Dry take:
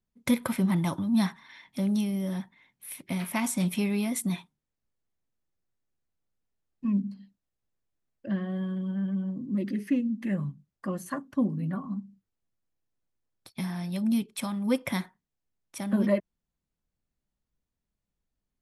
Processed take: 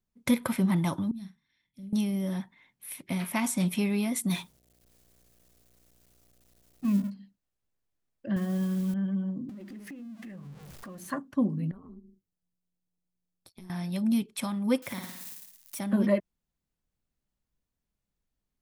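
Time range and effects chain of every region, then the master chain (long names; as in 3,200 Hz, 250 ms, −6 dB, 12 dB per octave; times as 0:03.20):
0:01.11–0:01.93: guitar amp tone stack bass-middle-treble 10-0-1 + double-tracking delay 47 ms −10 dB
0:04.29–0:07.09: mu-law and A-law mismatch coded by mu + high-shelf EQ 3,600 Hz +10 dB + hum with harmonics 60 Hz, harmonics 12, −69 dBFS
0:08.36–0:08.94: low-shelf EQ 110 Hz +10.5 dB + noise that follows the level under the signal 24 dB
0:09.49–0:11.11: converter with a step at zero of −40.5 dBFS + mains-hum notches 50/100/150/200/250/300/350/400 Hz + downward compressor 8 to 1, threshold −41 dBFS
0:11.71–0:13.70: parametric band 1,800 Hz −7 dB 2.2 octaves + downward compressor 5 to 1, threshold −43 dBFS + amplitude modulation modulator 180 Hz, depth 60%
0:14.82–0:15.79: spike at every zero crossing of −33 dBFS + downward compressor 4 to 1, threshold −35 dBFS + flutter between parallel walls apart 9.7 metres, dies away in 0.76 s
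whole clip: no processing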